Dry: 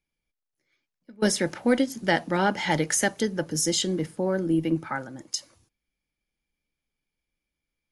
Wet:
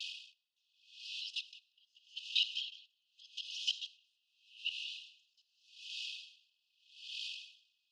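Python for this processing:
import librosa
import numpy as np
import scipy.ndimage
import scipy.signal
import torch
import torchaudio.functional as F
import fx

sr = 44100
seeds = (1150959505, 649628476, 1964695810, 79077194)

y = x + 0.5 * 10.0 ** (-37.5 / 20.0) * np.sign(x)
y = fx.tilt_eq(y, sr, slope=3.5)
y = fx.over_compress(y, sr, threshold_db=-26.0, ratio=-0.5)
y = fx.whisperise(y, sr, seeds[0])
y = scipy.signal.sosfilt(scipy.signal.butter(4, 3800.0, 'lowpass', fs=sr, output='sos'), y)
y = y + 10.0 ** (-8.0 / 20.0) * np.pad(y, (int(186 * sr / 1000.0), 0))[:len(y)]
y = fx.rev_schroeder(y, sr, rt60_s=3.6, comb_ms=29, drr_db=8.5)
y = fx.vibrato(y, sr, rate_hz=0.4, depth_cents=22.0)
y = fx.brickwall_highpass(y, sr, low_hz=2500.0)
y = fx.level_steps(y, sr, step_db=13)
y = y * 10.0 ** (-39 * (0.5 - 0.5 * np.cos(2.0 * np.pi * 0.83 * np.arange(len(y)) / sr)) / 20.0)
y = y * librosa.db_to_amplitude(9.5)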